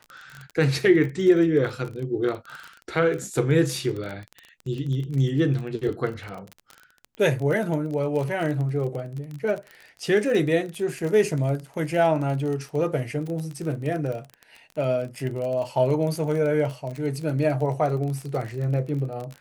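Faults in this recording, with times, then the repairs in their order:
crackle 29 per s -29 dBFS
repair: de-click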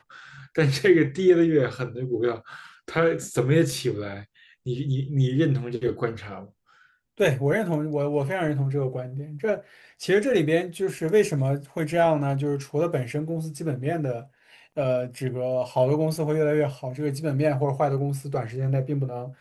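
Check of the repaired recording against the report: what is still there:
nothing left

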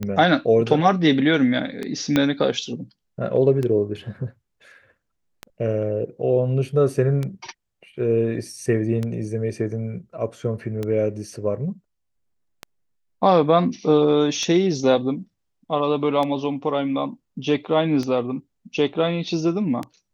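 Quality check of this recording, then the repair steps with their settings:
tick 33 1/3 rpm -14 dBFS
2.16 s: pop -6 dBFS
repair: de-click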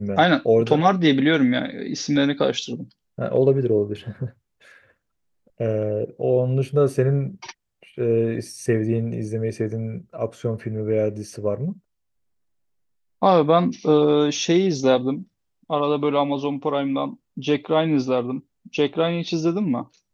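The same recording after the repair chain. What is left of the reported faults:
2.16 s: pop

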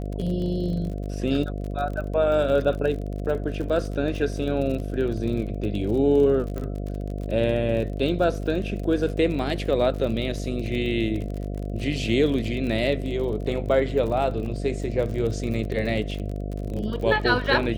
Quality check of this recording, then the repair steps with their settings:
buzz 50 Hz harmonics 14 -30 dBFS
crackle 41 per s -31 dBFS
6.58 s: pop -20 dBFS
14.46 s: dropout 2.3 ms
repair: de-click; de-hum 50 Hz, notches 14; interpolate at 14.46 s, 2.3 ms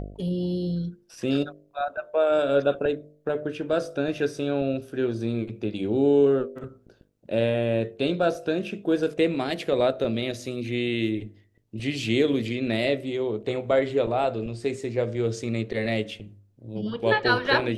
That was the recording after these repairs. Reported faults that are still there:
6.58 s: pop

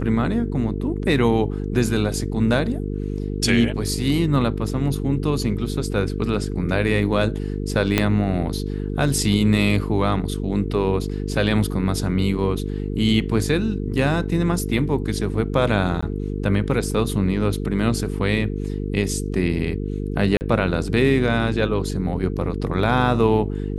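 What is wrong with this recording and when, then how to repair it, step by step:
buzz 50 Hz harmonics 9 -26 dBFS
7.98 s: pop -3 dBFS
16.01–16.02 s: dropout 15 ms
20.37–20.41 s: dropout 39 ms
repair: de-click; de-hum 50 Hz, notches 9; interpolate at 16.01 s, 15 ms; interpolate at 20.37 s, 39 ms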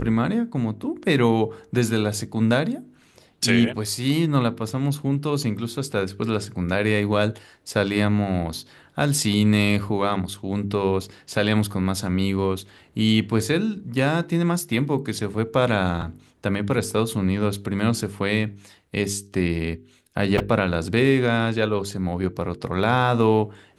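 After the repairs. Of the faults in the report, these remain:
7.98 s: pop

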